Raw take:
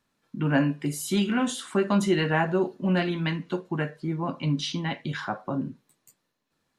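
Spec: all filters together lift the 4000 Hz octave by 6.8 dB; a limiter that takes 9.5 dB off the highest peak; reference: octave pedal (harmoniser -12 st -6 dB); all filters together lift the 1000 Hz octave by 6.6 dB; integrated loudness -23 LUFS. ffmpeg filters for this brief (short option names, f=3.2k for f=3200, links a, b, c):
-filter_complex "[0:a]equalizer=f=1k:t=o:g=8,equalizer=f=4k:t=o:g=8.5,alimiter=limit=-15dB:level=0:latency=1,asplit=2[a][b];[b]asetrate=22050,aresample=44100,atempo=2,volume=-6dB[c];[a][c]amix=inputs=2:normalize=0,volume=3dB"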